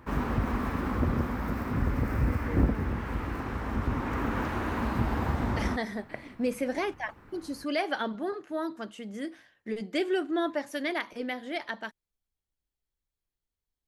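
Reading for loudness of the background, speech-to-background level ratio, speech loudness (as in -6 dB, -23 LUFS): -30.5 LUFS, -3.0 dB, -33.5 LUFS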